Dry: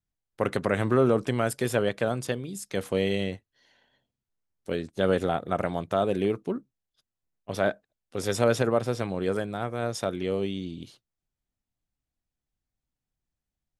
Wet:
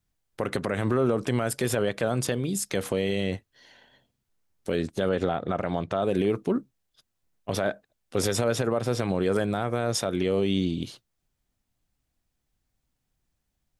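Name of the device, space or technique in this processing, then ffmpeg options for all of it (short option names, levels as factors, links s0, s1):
stacked limiters: -filter_complex "[0:a]alimiter=limit=0.178:level=0:latency=1:release=396,alimiter=limit=0.119:level=0:latency=1:release=170,alimiter=limit=0.0668:level=0:latency=1:release=73,asettb=1/sr,asplit=3[s0][s1][s2];[s0]atrim=end=5.094[s3];[s1]atrim=start=5.09:end=6.03,asetpts=PTS-STARTPTS,afade=t=in:d=0.004:c=qsin,afade=t=out:st=0.936:d=0.004:c=qsin,lowpass=5300[s4];[s2]atrim=start=6.026[s5];[s3][s4]acrossfade=d=0.004:c1=hsin:c2=qsin[s6];[s6][s5]acrossfade=d=0.004:c1=qsin:c2=hsin,volume=2.82"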